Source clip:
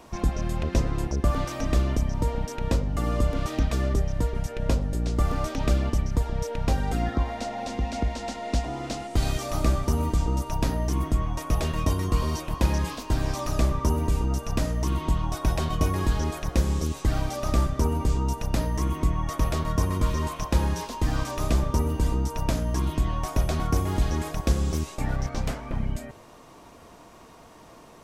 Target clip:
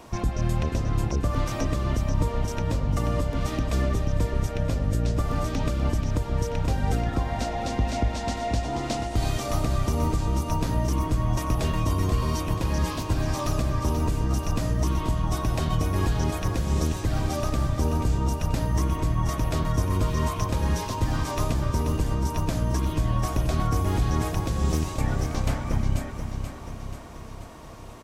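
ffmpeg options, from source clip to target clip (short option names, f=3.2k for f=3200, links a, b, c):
-af "alimiter=limit=-18.5dB:level=0:latency=1:release=214,equalizer=f=110:t=o:w=0.27:g=9,aecho=1:1:484|968|1452|1936|2420|2904|3388:0.398|0.231|0.134|0.0777|0.0451|0.0261|0.0152,volume=2.5dB"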